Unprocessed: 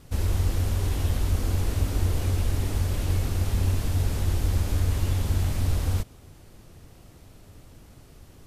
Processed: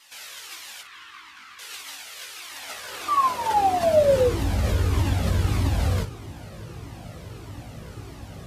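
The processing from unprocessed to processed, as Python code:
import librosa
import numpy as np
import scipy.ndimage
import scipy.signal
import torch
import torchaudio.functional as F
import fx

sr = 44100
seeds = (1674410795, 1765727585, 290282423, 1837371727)

p1 = fx.high_shelf(x, sr, hz=6000.0, db=-10.5)
p2 = fx.over_compress(p1, sr, threshold_db=-31.0, ratio=-1.0)
p3 = p1 + F.gain(torch.from_numpy(p2), -3.0).numpy()
p4 = fx.curve_eq(p3, sr, hz=(330.0, 580.0, 1100.0, 11000.0), db=(0, -23, 4, -21), at=(0.81, 1.59))
p5 = fx.spec_paint(p4, sr, seeds[0], shape='fall', start_s=3.08, length_s=1.24, low_hz=470.0, high_hz=1200.0, level_db=-25.0)
p6 = p5 + fx.room_early_taps(p5, sr, ms=(18, 58), db=(-5.0, -12.0), dry=0)
p7 = fx.filter_sweep_highpass(p6, sr, from_hz=2100.0, to_hz=87.0, start_s=2.35, end_s=4.62, q=0.7)
p8 = fx.comb_cascade(p7, sr, direction='falling', hz=1.6)
y = F.gain(torch.from_numpy(p8), 8.0).numpy()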